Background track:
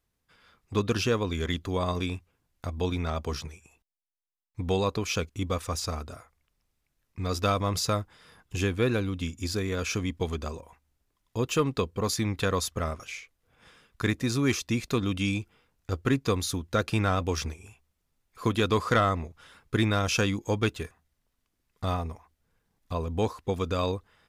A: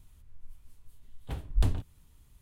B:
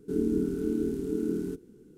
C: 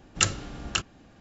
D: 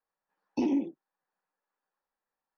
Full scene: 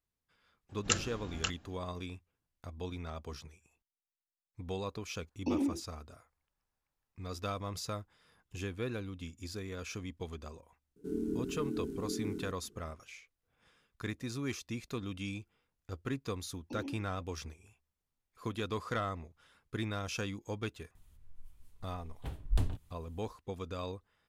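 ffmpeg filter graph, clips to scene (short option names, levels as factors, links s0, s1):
-filter_complex "[4:a]asplit=2[s0][s1];[0:a]volume=0.251[s2];[3:a]atrim=end=1.2,asetpts=PTS-STARTPTS,volume=0.422,afade=t=in:d=0.004:c=hsin,afade=t=out:st=1.196:d=0.004:c=hsin,adelay=690[s3];[s0]atrim=end=2.57,asetpts=PTS-STARTPTS,volume=0.596,afade=t=in:d=0.004:c=hsin,afade=t=out:st=2.566:d=0.004:c=hsin,adelay=215649S[s4];[2:a]atrim=end=1.97,asetpts=PTS-STARTPTS,volume=0.376,afade=t=in:d=0.004:c=hsin,afade=t=out:st=1.966:d=0.004:c=hsin,adelay=10960[s5];[s1]atrim=end=2.57,asetpts=PTS-STARTPTS,volume=0.168,afade=t=in:d=0.004:c=hsin,afade=t=out:st=2.566:d=0.004:c=hsin,adelay=16130[s6];[1:a]atrim=end=2.41,asetpts=PTS-STARTPTS,volume=0.596,afade=t=in:d=0.004:c=hsin,afade=t=out:st=2.406:d=0.004:c=hsin,adelay=20950[s7];[s2][s3][s4][s5][s6][s7]amix=inputs=6:normalize=0"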